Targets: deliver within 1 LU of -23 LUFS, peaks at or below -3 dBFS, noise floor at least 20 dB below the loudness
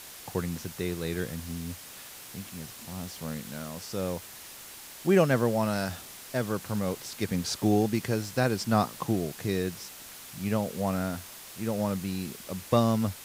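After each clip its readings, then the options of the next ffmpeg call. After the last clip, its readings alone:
noise floor -46 dBFS; noise floor target -50 dBFS; loudness -30.0 LUFS; peak -10.5 dBFS; loudness target -23.0 LUFS
-> -af "afftdn=nr=6:nf=-46"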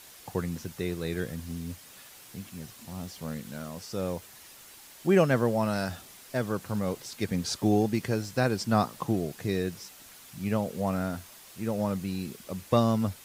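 noise floor -51 dBFS; loudness -30.0 LUFS; peak -10.5 dBFS; loudness target -23.0 LUFS
-> -af "volume=7dB"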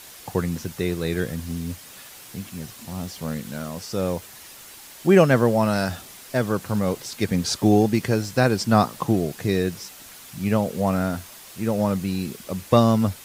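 loudness -23.0 LUFS; peak -3.5 dBFS; noise floor -44 dBFS

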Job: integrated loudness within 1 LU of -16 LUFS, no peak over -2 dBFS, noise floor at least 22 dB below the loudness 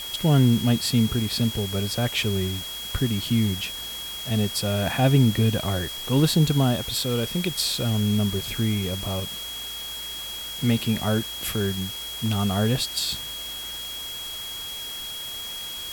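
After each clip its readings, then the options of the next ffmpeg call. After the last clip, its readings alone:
steady tone 3300 Hz; tone level -33 dBFS; noise floor -34 dBFS; noise floor target -47 dBFS; loudness -24.5 LUFS; peak -7.5 dBFS; loudness target -16.0 LUFS
-> -af "bandreject=f=3.3k:w=30"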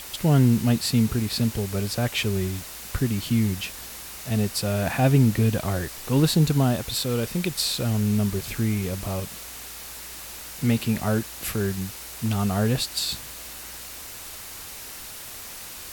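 steady tone none; noise floor -39 dBFS; noise floor target -47 dBFS
-> -af "afftdn=nr=8:nf=-39"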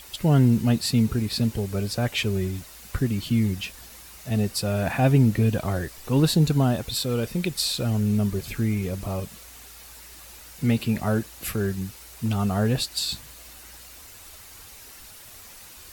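noise floor -46 dBFS; noise floor target -47 dBFS
-> -af "afftdn=nr=6:nf=-46"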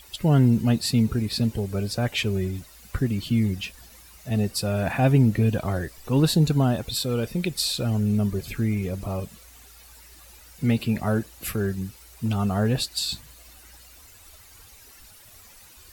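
noise floor -50 dBFS; loudness -24.5 LUFS; peak -8.5 dBFS; loudness target -16.0 LUFS
-> -af "volume=8.5dB,alimiter=limit=-2dB:level=0:latency=1"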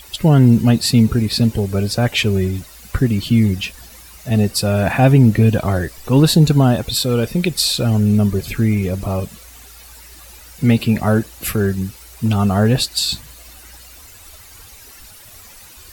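loudness -16.0 LUFS; peak -2.0 dBFS; noise floor -41 dBFS

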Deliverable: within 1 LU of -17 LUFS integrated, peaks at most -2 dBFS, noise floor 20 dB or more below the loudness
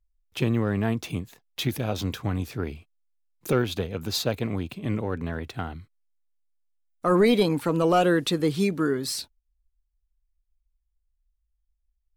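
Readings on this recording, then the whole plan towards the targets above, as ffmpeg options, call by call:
loudness -26.0 LUFS; peak -11.5 dBFS; loudness target -17.0 LUFS
-> -af "volume=9dB"

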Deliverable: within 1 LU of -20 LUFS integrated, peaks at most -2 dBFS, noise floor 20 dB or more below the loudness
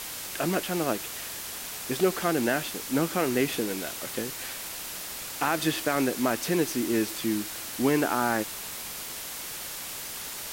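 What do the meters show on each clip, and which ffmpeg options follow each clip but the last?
noise floor -38 dBFS; noise floor target -49 dBFS; loudness -29.0 LUFS; peak -11.0 dBFS; loudness target -20.0 LUFS
-> -af "afftdn=nr=11:nf=-38"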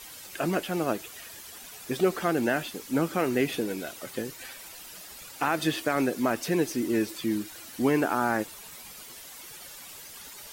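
noise floor -45 dBFS; noise floor target -49 dBFS
-> -af "afftdn=nr=6:nf=-45"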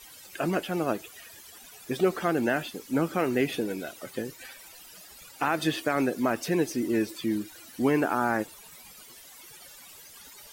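noise floor -50 dBFS; loudness -28.5 LUFS; peak -12.0 dBFS; loudness target -20.0 LUFS
-> -af "volume=8.5dB"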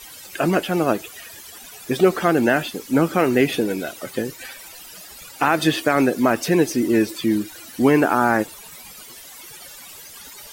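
loudness -20.0 LUFS; peak -3.5 dBFS; noise floor -41 dBFS

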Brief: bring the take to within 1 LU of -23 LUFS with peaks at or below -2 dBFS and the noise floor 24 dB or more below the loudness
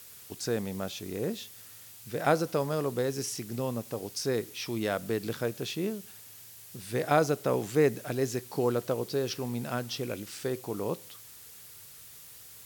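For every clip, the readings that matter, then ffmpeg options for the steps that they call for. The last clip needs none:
noise floor -50 dBFS; noise floor target -56 dBFS; loudness -31.5 LUFS; peak -9.5 dBFS; loudness target -23.0 LUFS
-> -af "afftdn=nr=6:nf=-50"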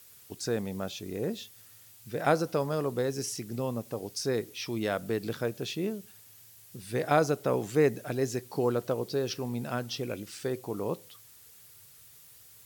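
noise floor -55 dBFS; noise floor target -56 dBFS
-> -af "afftdn=nr=6:nf=-55"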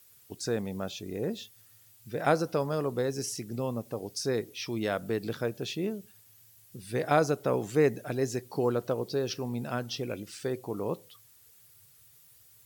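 noise floor -59 dBFS; loudness -31.5 LUFS; peak -9.5 dBFS; loudness target -23.0 LUFS
-> -af "volume=8.5dB,alimiter=limit=-2dB:level=0:latency=1"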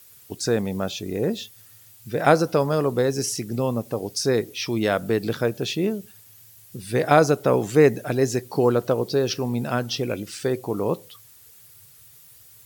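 loudness -23.0 LUFS; peak -2.0 dBFS; noise floor -50 dBFS

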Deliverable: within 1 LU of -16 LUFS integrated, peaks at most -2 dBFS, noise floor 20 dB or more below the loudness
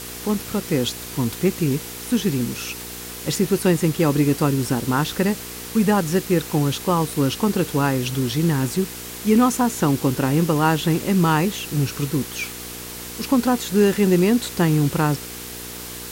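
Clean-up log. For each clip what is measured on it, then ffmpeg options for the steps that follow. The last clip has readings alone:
hum 60 Hz; harmonics up to 480 Hz; hum level -41 dBFS; noise floor -34 dBFS; noise floor target -41 dBFS; loudness -21.0 LUFS; peak -6.5 dBFS; loudness target -16.0 LUFS
-> -af "bandreject=f=60:t=h:w=4,bandreject=f=120:t=h:w=4,bandreject=f=180:t=h:w=4,bandreject=f=240:t=h:w=4,bandreject=f=300:t=h:w=4,bandreject=f=360:t=h:w=4,bandreject=f=420:t=h:w=4,bandreject=f=480:t=h:w=4"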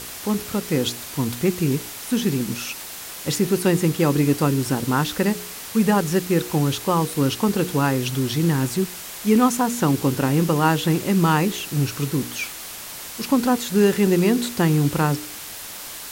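hum none; noise floor -36 dBFS; noise floor target -42 dBFS
-> -af "afftdn=nr=6:nf=-36"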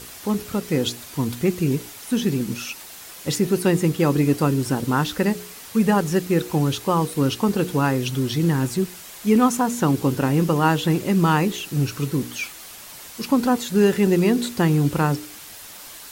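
noise floor -40 dBFS; noise floor target -42 dBFS
-> -af "afftdn=nr=6:nf=-40"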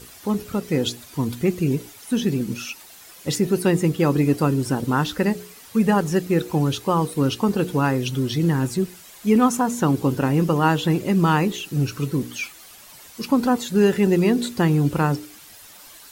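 noise floor -45 dBFS; loudness -21.5 LUFS; peak -6.0 dBFS; loudness target -16.0 LUFS
-> -af "volume=5.5dB,alimiter=limit=-2dB:level=0:latency=1"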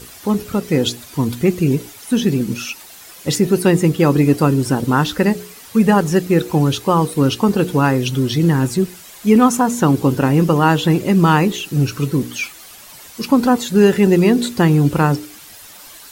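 loudness -16.0 LUFS; peak -2.0 dBFS; noise floor -40 dBFS

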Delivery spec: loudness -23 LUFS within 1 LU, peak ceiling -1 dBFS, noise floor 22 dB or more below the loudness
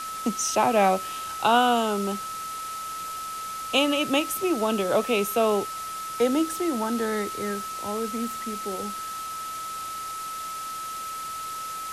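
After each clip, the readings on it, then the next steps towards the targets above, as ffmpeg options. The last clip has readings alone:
steady tone 1300 Hz; tone level -32 dBFS; noise floor -34 dBFS; noise floor target -49 dBFS; loudness -26.5 LUFS; peak -8.5 dBFS; loudness target -23.0 LUFS
-> -af "bandreject=f=1.3k:w=30"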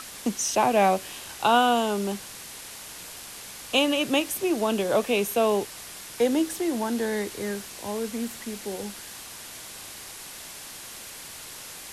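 steady tone none; noise floor -42 dBFS; noise floor target -48 dBFS
-> -af "afftdn=nr=6:nf=-42"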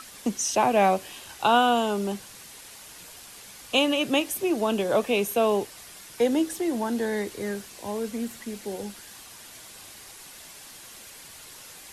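noise floor -46 dBFS; noise floor target -48 dBFS
-> -af "afftdn=nr=6:nf=-46"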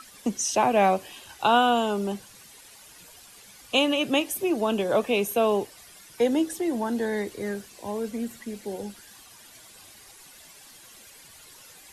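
noise floor -50 dBFS; loudness -25.5 LUFS; peak -9.5 dBFS; loudness target -23.0 LUFS
-> -af "volume=2.5dB"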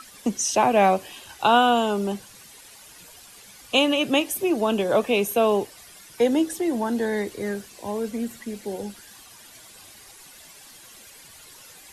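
loudness -23.0 LUFS; peak -7.0 dBFS; noise floor -48 dBFS

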